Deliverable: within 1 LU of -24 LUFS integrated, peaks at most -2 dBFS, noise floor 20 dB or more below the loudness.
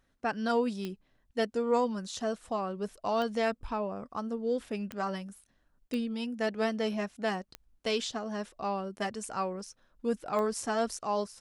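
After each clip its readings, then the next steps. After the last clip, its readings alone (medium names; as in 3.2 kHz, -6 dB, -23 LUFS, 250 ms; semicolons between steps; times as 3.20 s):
clicks found 6; loudness -33.0 LUFS; peak level -14.5 dBFS; loudness target -24.0 LUFS
-> de-click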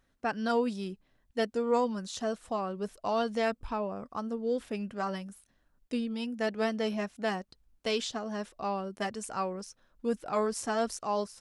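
clicks found 0; loudness -33.0 LUFS; peak level -14.5 dBFS; loudness target -24.0 LUFS
-> trim +9 dB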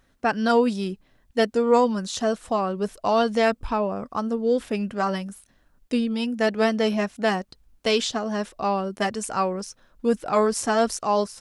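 loudness -24.0 LUFS; peak level -5.5 dBFS; noise floor -63 dBFS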